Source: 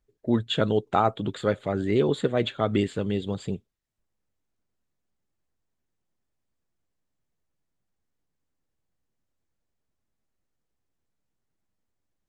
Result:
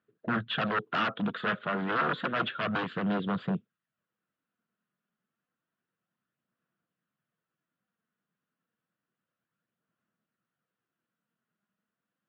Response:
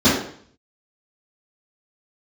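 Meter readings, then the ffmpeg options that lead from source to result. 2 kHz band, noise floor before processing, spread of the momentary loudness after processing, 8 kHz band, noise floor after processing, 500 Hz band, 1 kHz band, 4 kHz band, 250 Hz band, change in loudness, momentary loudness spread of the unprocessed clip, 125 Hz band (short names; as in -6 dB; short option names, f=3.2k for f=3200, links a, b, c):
+6.5 dB, -80 dBFS, 4 LU, under -20 dB, under -85 dBFS, -10.5 dB, -2.0 dB, -3.5 dB, -5.5 dB, -4.5 dB, 7 LU, -8.0 dB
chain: -af "aeval=exprs='0.0596*(abs(mod(val(0)/0.0596+3,4)-2)-1)':c=same,aphaser=in_gain=1:out_gain=1:delay=4.9:decay=0.28:speed=0.3:type=sinusoidal,highpass=f=160:w=0.5412,highpass=f=160:w=1.3066,equalizer=f=280:t=q:w=4:g=-7,equalizer=f=400:t=q:w=4:g=-9,equalizer=f=580:t=q:w=4:g=-5,equalizer=f=840:t=q:w=4:g=-10,equalizer=f=1.4k:t=q:w=4:g=6,equalizer=f=2.2k:t=q:w=4:g=-7,lowpass=f=2.9k:w=0.5412,lowpass=f=2.9k:w=1.3066,volume=4.5dB"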